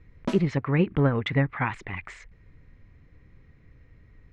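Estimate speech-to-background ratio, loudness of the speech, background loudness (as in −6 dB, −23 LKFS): 10.0 dB, −26.0 LKFS, −36.0 LKFS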